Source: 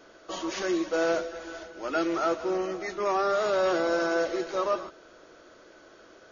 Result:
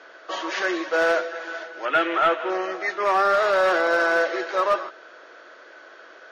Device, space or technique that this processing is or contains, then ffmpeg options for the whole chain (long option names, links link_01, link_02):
megaphone: -filter_complex "[0:a]highpass=540,lowpass=4000,equalizer=frequency=1700:width_type=o:width=0.5:gain=6,asoftclip=type=hard:threshold=-21dB,asettb=1/sr,asplit=3[link_01][link_02][link_03];[link_01]atrim=end=1.854[link_04];[link_02]atrim=start=1.85:end=2.5,asetpts=PTS-STARTPTS,afade=type=in:duration=0.004:curve=qsin,afade=type=out:start_time=0.646:duration=0.004:curve=qsin,highshelf=frequency=3900:width_type=q:width=3:gain=-6.5[link_05];[link_03]atrim=start=2.496[link_06];[link_04][link_05]acrossfade=duration=0.004:curve1=hsin:curve2=qsin[link_07];[link_07][link_06]acrossfade=duration=0.004:curve1=qsin:curve2=hsin,volume=7.5dB"